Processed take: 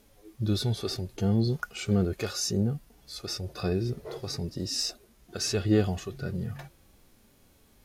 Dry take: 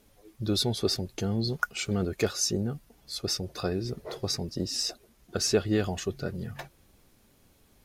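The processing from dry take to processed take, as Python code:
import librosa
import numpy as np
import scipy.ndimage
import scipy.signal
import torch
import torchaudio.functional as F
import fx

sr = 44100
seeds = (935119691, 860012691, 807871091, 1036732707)

y = fx.hpss(x, sr, part='percussive', gain_db=-12)
y = F.gain(torch.from_numpy(y), 5.0).numpy()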